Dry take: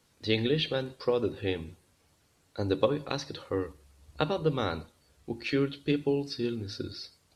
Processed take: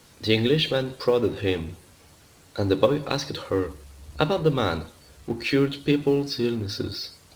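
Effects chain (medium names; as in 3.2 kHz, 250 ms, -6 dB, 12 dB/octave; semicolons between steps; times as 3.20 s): companding laws mixed up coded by mu; trim +5.5 dB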